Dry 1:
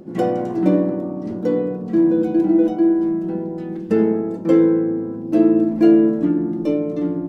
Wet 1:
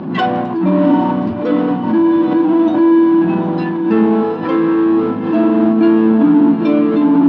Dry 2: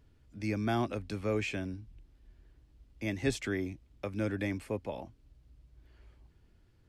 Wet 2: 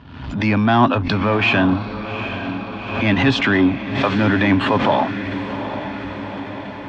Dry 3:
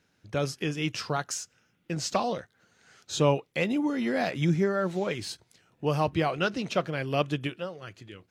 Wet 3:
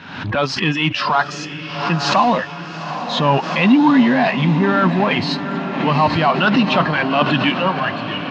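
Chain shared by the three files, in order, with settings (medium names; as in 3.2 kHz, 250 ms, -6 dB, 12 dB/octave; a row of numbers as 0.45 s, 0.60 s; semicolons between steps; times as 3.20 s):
spectral noise reduction 16 dB; peaking EQ 320 Hz -11 dB 1.2 oct; power-law waveshaper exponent 0.7; reverse; compression 6:1, threshold -35 dBFS; reverse; cabinet simulation 130–3600 Hz, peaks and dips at 260 Hz +9 dB, 490 Hz -7 dB, 990 Hz +7 dB, 2.1 kHz -5 dB; on a send: echo that smears into a reverb 805 ms, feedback 67%, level -10 dB; on the sum: swell ahead of each attack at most 62 dB/s; peak normalisation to -2 dBFS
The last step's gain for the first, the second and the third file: +22.0 dB, +22.5 dB, +20.5 dB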